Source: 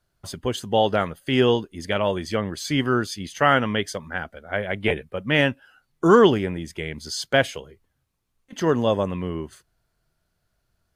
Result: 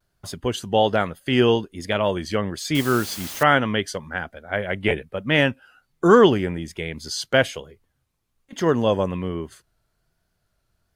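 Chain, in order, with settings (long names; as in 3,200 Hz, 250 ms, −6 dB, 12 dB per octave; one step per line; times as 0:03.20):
0:02.75–0:03.43: bit-depth reduction 6 bits, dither triangular
pitch vibrato 1.2 Hz 56 cents
level +1 dB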